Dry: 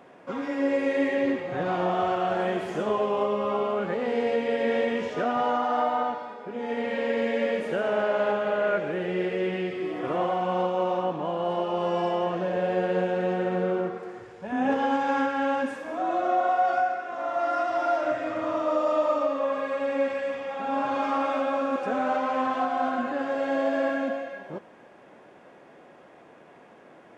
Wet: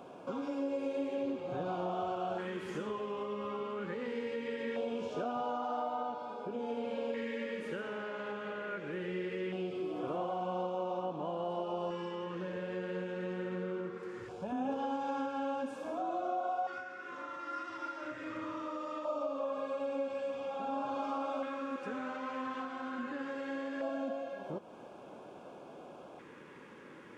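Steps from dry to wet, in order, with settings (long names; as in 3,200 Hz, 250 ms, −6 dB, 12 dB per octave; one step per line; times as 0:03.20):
downward compressor 2.5 to 1, threshold −40 dBFS, peak gain reduction 13.5 dB
auto-filter notch square 0.21 Hz 690–1,900 Hz
level +1.5 dB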